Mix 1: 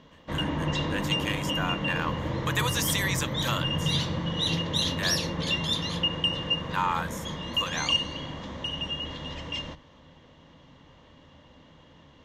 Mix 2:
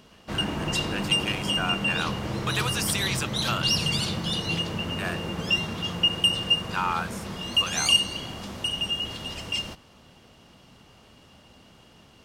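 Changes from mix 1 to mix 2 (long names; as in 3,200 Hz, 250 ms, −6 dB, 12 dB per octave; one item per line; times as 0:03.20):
first sound: remove high-frequency loss of the air 170 metres
second sound: entry −1.40 s
master: remove EQ curve with evenly spaced ripples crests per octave 1.1, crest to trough 8 dB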